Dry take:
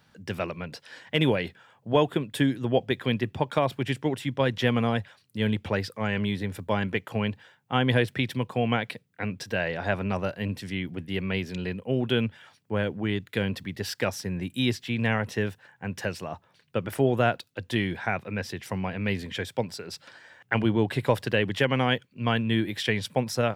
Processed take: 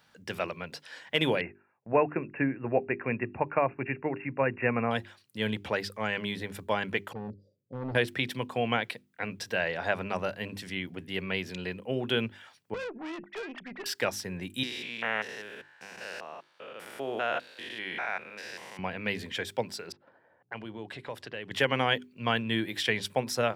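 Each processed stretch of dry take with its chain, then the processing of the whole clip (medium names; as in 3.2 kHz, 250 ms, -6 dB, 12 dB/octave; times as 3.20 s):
1.41–4.91 s: gate -52 dBFS, range -14 dB + brick-wall FIR low-pass 2.8 kHz
7.13–7.95 s: Chebyshev band-stop 570–4600 Hz, order 5 + hard clipper -26 dBFS + distance through air 330 m
12.74–13.86 s: formants replaced by sine waves + valve stage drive 32 dB, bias 0.5
14.63–18.79 s: spectrogram pixelated in time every 200 ms + frequency weighting A
19.92–21.51 s: level-controlled noise filter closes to 550 Hz, open at -19.5 dBFS + compression 2:1, threshold -42 dBFS
whole clip: bass shelf 270 Hz -9.5 dB; hum notches 50/100/150/200/250/300/350/400 Hz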